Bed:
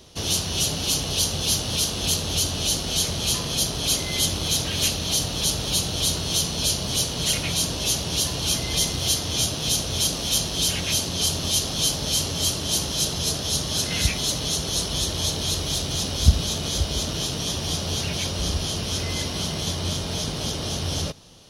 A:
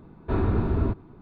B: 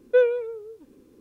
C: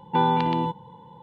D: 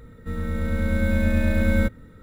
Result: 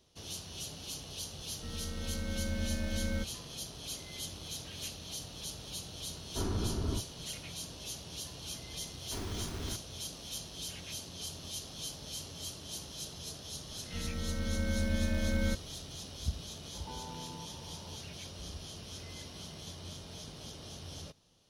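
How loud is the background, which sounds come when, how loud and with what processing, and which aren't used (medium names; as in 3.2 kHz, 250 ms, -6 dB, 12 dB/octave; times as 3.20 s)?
bed -19 dB
1.36 s: add D -14.5 dB
6.07 s: add A -10.5 dB
8.83 s: add A -16.5 dB + bit crusher 5-bit
13.67 s: add D -11 dB
16.74 s: add C -8.5 dB + compression 10:1, threshold -35 dBFS
not used: B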